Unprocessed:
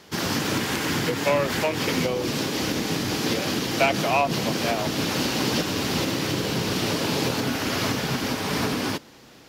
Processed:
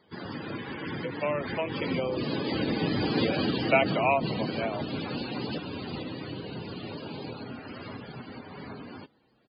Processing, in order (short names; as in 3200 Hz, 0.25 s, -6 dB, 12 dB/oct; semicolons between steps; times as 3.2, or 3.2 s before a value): Doppler pass-by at 3.2, 12 m/s, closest 11 m; downsampling 11025 Hz; loudest bins only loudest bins 64